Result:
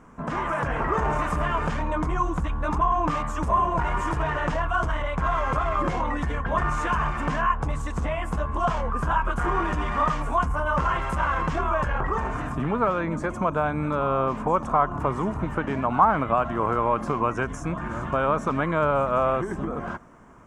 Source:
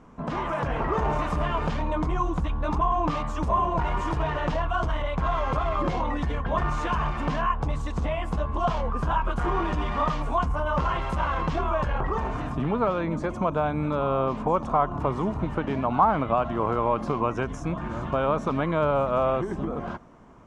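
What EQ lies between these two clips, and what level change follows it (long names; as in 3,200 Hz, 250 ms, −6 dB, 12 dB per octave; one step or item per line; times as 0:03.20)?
drawn EQ curve 790 Hz 0 dB, 1,600 Hz +6 dB, 4,100 Hz −4 dB, 8,000 Hz +8 dB
0.0 dB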